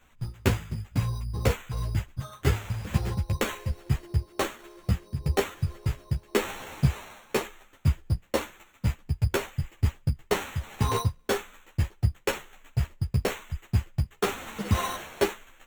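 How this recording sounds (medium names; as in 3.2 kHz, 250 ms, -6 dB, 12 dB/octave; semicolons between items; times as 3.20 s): aliases and images of a low sample rate 4.9 kHz, jitter 0%; a shimmering, thickened sound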